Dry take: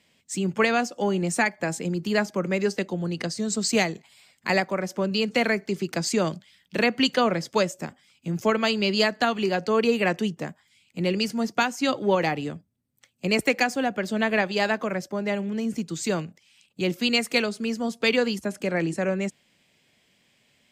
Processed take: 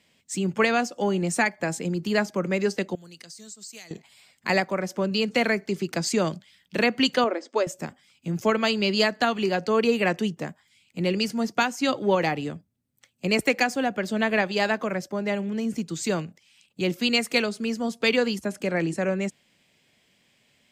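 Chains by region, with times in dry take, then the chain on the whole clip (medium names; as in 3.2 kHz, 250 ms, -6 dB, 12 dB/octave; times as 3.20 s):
2.95–3.91 s: pre-emphasis filter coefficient 0.9 + compression 4:1, threshold -40 dBFS
7.24–7.67 s: brick-wall FIR band-pass 230–8700 Hz + treble shelf 2 kHz -11 dB
whole clip: none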